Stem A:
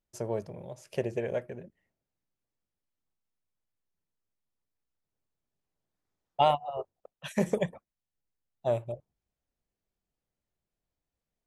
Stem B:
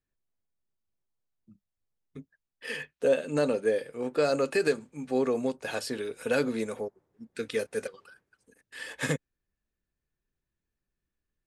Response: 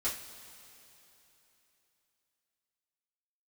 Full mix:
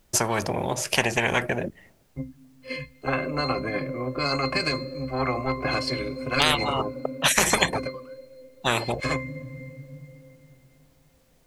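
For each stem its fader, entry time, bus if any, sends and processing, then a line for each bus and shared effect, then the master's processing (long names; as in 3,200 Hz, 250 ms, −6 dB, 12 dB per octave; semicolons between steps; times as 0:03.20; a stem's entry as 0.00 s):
+2.5 dB, 0.00 s, no send, hard clipping −12.5 dBFS, distortion −44 dB
−0.5 dB, 0.00 s, send −20.5 dB, automatic gain control gain up to 13 dB; resonances in every octave C, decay 0.19 s; multiband upward and downward expander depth 100%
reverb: on, pre-delay 3 ms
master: every bin compressed towards the loudest bin 10 to 1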